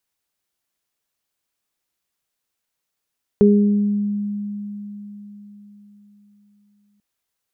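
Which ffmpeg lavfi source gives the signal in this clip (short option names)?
-f lavfi -i "aevalsrc='0.316*pow(10,-3*t/4.3)*sin(2*PI*205*t)+0.316*pow(10,-3*t/0.88)*sin(2*PI*410*t)':d=3.59:s=44100"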